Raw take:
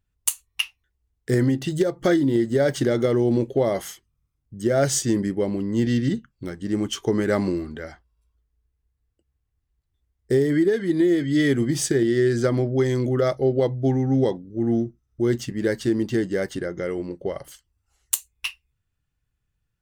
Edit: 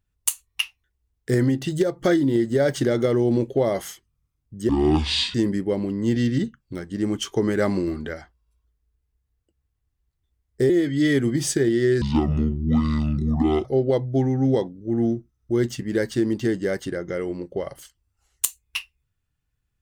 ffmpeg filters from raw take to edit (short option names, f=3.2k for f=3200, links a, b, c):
-filter_complex "[0:a]asplit=8[a][b][c][d][e][f][g][h];[a]atrim=end=4.694[i];[b]atrim=start=4.69:end=5.05,asetpts=PTS-STARTPTS,asetrate=24255,aresample=44100,atrim=end_sample=28865,asetpts=PTS-STARTPTS[j];[c]atrim=start=5.046:end=7.582[k];[d]atrim=start=7.578:end=7.842,asetpts=PTS-STARTPTS,volume=3.5dB[l];[e]atrim=start=7.838:end=10.402[m];[f]atrim=start=11.038:end=12.364[n];[g]atrim=start=12.36:end=13.34,asetpts=PTS-STARTPTS,asetrate=26460,aresample=44100[o];[h]atrim=start=13.336[p];[i][j]acrossfade=d=0.004:c1=hsin:c2=hsin[q];[q][k]acrossfade=d=0.004:c1=hsin:c2=hsin[r];[r][l]acrossfade=d=0.004:c1=hsin:c2=hsin[s];[s][m]acrossfade=d=0.004:c1=hsin:c2=hsin[t];[t][n]acrossfade=d=0.004:c1=hsin:c2=hsin[u];[u][o]acrossfade=d=0.004:c1=hsin:c2=hsin[v];[v][p]acrossfade=d=0.004:c1=hsin:c2=hsin"